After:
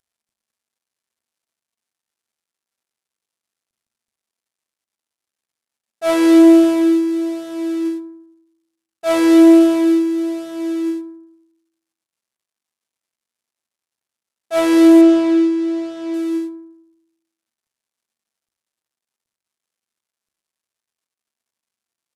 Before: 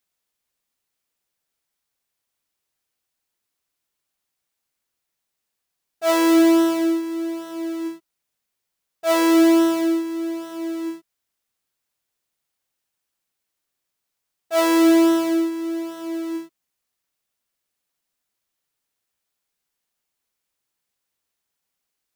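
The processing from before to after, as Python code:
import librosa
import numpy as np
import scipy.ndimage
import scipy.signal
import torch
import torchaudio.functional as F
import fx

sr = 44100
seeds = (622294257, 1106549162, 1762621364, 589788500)

y = fx.cvsd(x, sr, bps=64000)
y = fx.lowpass(y, sr, hz=5900.0, slope=12, at=(15.01, 16.14))
y = fx.rev_fdn(y, sr, rt60_s=0.72, lf_ratio=1.35, hf_ratio=0.45, size_ms=26.0, drr_db=8.0)
y = y * 10.0 ** (2.5 / 20.0)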